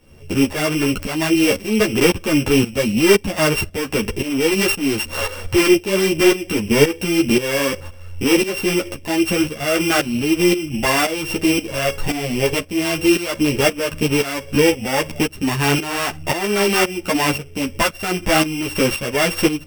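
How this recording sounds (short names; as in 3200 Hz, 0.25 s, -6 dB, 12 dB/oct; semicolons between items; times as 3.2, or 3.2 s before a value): a buzz of ramps at a fixed pitch in blocks of 16 samples; tremolo saw up 1.9 Hz, depth 80%; a shimmering, thickened sound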